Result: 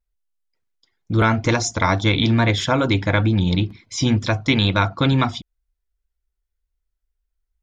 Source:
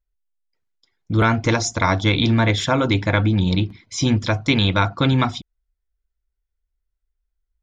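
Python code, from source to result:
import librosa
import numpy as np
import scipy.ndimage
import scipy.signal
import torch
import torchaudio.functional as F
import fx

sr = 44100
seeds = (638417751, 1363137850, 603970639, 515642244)

y = fx.wow_flutter(x, sr, seeds[0], rate_hz=2.1, depth_cents=43.0)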